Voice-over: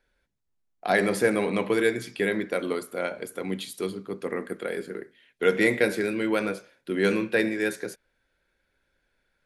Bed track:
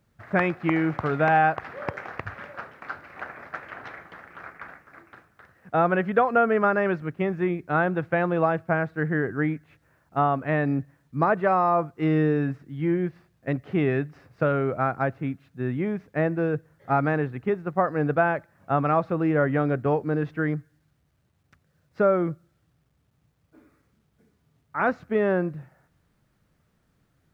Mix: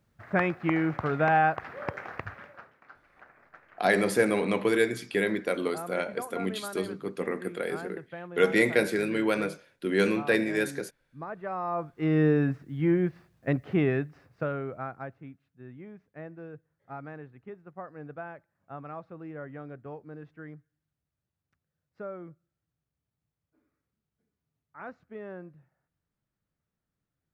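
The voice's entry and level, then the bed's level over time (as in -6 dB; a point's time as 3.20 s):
2.95 s, -1.0 dB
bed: 2.23 s -3 dB
2.87 s -17.5 dB
11.25 s -17.5 dB
12.27 s 0 dB
13.67 s 0 dB
15.50 s -18.5 dB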